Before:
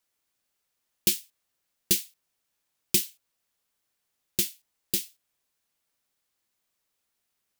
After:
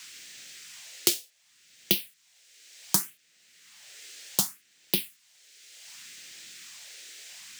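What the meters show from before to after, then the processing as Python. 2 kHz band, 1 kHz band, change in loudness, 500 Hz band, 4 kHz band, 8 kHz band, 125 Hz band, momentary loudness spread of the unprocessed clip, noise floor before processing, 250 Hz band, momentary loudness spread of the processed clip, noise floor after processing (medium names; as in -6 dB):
+2.5 dB, no reading, -0.5 dB, +2.5 dB, +2.0 dB, 0.0 dB, +1.0 dB, 11 LU, -80 dBFS, +1.0 dB, 18 LU, -65 dBFS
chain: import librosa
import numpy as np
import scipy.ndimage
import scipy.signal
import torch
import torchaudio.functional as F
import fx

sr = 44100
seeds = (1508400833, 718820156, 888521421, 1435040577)

y = fx.halfwave_hold(x, sr)
y = scipy.signal.sosfilt(scipy.signal.butter(4, 120.0, 'highpass', fs=sr, output='sos'), y)
y = fx.phaser_stages(y, sr, stages=4, low_hz=170.0, high_hz=1400.0, hz=0.67, feedback_pct=25)
y = fx.dmg_noise_band(y, sr, seeds[0], low_hz=1700.0, high_hz=8200.0, level_db=-70.0)
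y = fx.band_squash(y, sr, depth_pct=70)
y = F.gain(torch.from_numpy(y), 1.5).numpy()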